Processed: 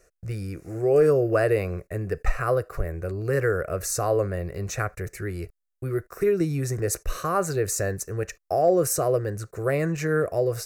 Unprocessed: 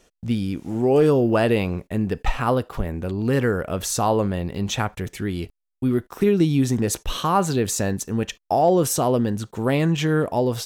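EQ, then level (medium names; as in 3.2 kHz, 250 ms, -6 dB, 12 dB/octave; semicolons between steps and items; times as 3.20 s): static phaser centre 890 Hz, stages 6; 0.0 dB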